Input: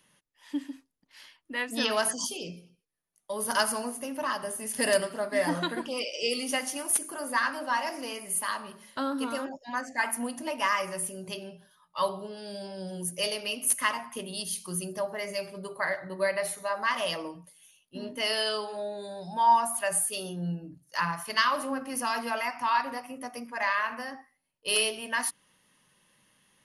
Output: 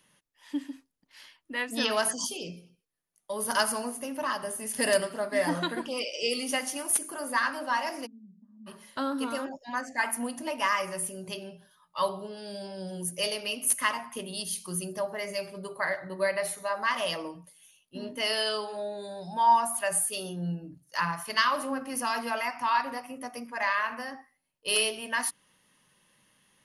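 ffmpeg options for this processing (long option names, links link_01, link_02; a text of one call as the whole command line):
ffmpeg -i in.wav -filter_complex "[0:a]asplit=3[link_01][link_02][link_03];[link_01]afade=type=out:start_time=8.05:duration=0.02[link_04];[link_02]asuperpass=centerf=210:order=4:qfactor=4.2,afade=type=in:start_time=8.05:duration=0.02,afade=type=out:start_time=8.66:duration=0.02[link_05];[link_03]afade=type=in:start_time=8.66:duration=0.02[link_06];[link_04][link_05][link_06]amix=inputs=3:normalize=0" out.wav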